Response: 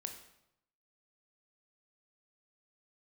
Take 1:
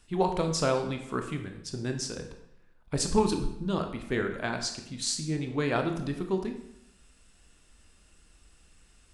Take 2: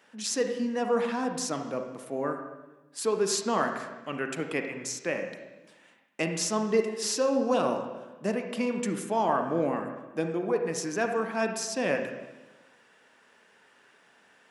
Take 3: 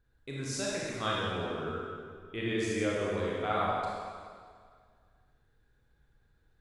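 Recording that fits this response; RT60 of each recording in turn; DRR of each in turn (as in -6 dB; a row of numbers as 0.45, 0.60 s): 1; 0.80, 1.1, 2.0 s; 5.0, 4.5, -5.5 dB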